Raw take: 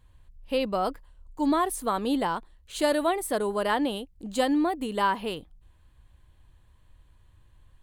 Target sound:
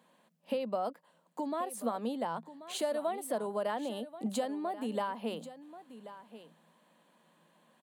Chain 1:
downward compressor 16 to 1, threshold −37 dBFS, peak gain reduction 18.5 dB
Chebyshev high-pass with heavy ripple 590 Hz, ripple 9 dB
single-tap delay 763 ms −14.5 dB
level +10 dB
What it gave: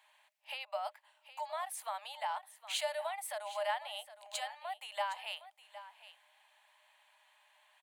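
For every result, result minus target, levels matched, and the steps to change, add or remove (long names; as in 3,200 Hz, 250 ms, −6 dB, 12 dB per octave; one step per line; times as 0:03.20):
echo 321 ms early; 500 Hz band −3.0 dB
change: single-tap delay 1,084 ms −14.5 dB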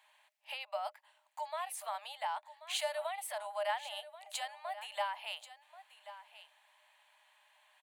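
500 Hz band −3.0 dB
change: Chebyshev high-pass with heavy ripple 160 Hz, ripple 9 dB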